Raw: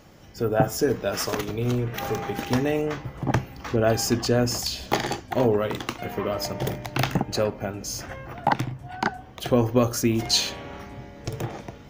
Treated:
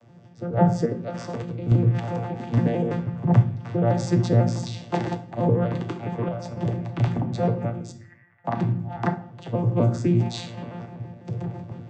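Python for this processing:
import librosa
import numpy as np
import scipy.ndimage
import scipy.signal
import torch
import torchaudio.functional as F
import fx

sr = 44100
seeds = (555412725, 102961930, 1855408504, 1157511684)

y = fx.vocoder_arp(x, sr, chord='bare fifth', root=46, every_ms=83)
y = fx.bandpass_q(y, sr, hz=1900.0, q=9.7, at=(7.91, 8.44), fade=0.02)
y = fx.room_shoebox(y, sr, seeds[0], volume_m3=92.0, walls='mixed', distance_m=0.37)
y = fx.tremolo_random(y, sr, seeds[1], hz=3.5, depth_pct=55)
y = y * librosa.db_to_amplitude(4.5)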